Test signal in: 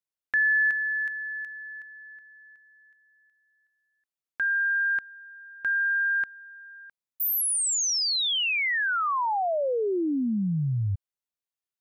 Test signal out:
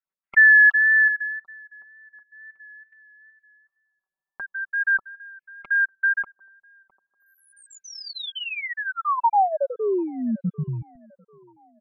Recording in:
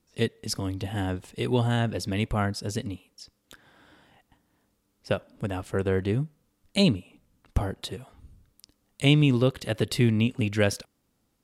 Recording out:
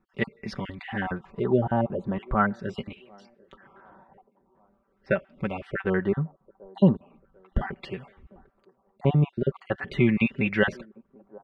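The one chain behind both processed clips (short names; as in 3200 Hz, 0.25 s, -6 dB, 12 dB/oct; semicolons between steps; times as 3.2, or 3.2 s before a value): random spectral dropouts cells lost 29%; on a send: band-limited delay 0.745 s, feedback 40%, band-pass 500 Hz, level -23 dB; on the sum: LFO low-pass sine 0.41 Hz 900–2300 Hz; comb 5.2 ms, depth 65%; wow and flutter 25 cents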